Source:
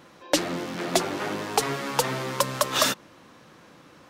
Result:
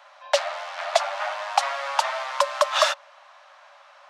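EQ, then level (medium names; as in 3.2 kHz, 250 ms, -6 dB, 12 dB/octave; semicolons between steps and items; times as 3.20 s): Chebyshev high-pass 560 Hz, order 10; tape spacing loss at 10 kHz 27 dB; treble shelf 5.7 kHz +11.5 dB; +7.5 dB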